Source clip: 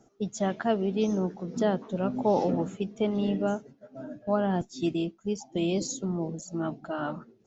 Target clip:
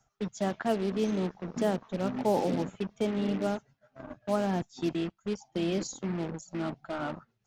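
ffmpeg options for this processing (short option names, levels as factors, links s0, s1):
-filter_complex "[0:a]acrossover=split=140|780|3700[s0][s1][s2][s3];[s1]acrusher=bits=5:mix=0:aa=0.5[s4];[s3]tremolo=f=7.5:d=0.65[s5];[s0][s4][s2][s5]amix=inputs=4:normalize=0,volume=0.75"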